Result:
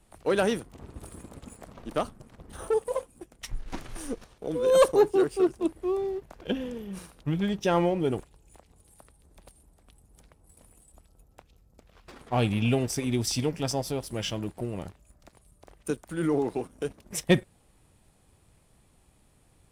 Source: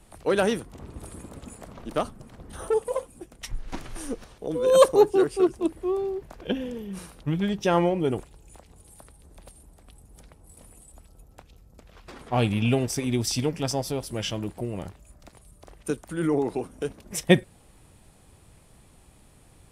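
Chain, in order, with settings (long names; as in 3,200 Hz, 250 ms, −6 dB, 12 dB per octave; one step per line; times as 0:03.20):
leveller curve on the samples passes 1
level −5.5 dB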